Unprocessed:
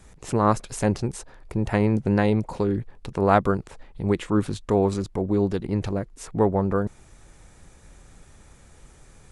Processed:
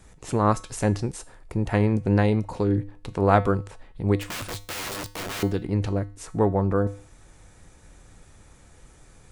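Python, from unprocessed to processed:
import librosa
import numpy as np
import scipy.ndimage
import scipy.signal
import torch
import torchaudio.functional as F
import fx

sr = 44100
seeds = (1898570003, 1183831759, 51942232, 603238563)

y = fx.overflow_wrap(x, sr, gain_db=27.0, at=(4.18, 5.43))
y = fx.comb_fb(y, sr, f0_hz=100.0, decay_s=0.41, harmonics='odd', damping=0.0, mix_pct=60)
y = y * 10.0 ** (6.0 / 20.0)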